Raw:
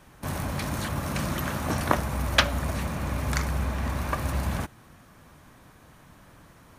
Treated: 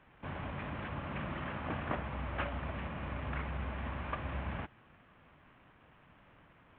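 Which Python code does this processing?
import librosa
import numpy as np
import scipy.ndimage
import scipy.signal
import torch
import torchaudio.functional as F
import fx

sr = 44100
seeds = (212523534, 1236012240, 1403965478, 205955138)

y = fx.cvsd(x, sr, bps=16000)
y = fx.low_shelf(y, sr, hz=350.0, db=-3.5)
y = y * 10.0 ** (-7.5 / 20.0)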